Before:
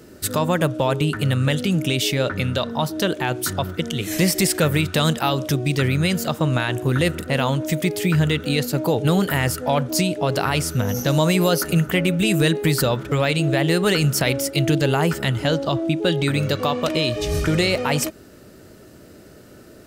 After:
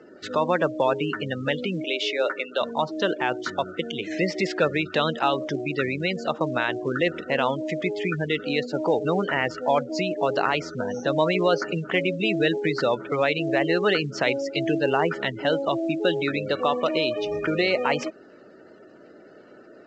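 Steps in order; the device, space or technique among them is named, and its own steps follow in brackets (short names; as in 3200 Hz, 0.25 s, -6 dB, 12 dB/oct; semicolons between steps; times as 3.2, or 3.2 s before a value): spectral gate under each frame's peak -25 dB strong; 1.84–2.61 HPF 340 Hz 24 dB/oct; telephone (BPF 320–3100 Hz; µ-law 128 kbps 16000 Hz)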